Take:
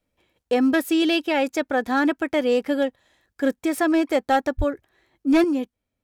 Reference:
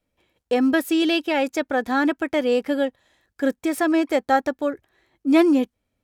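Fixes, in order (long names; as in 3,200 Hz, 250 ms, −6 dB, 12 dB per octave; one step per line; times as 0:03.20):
clipped peaks rebuilt −12.5 dBFS
0:04.57–0:04.69: high-pass filter 140 Hz 24 dB per octave
level 0 dB, from 0:05.44 +5.5 dB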